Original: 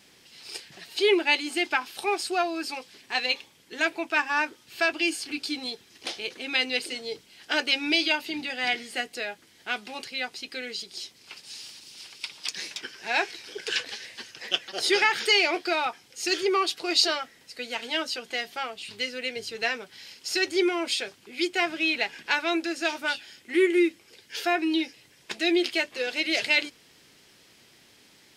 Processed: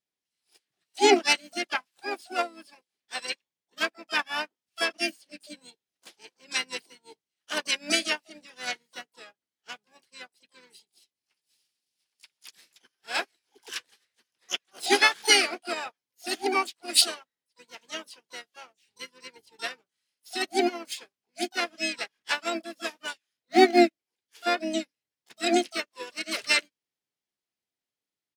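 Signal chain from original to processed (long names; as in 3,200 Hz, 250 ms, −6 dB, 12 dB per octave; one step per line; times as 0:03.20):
pitch-shifted copies added −7 semitones −11 dB, −4 semitones −12 dB, +12 semitones −3 dB
expander for the loud parts 2.5 to 1, over −43 dBFS
level +3 dB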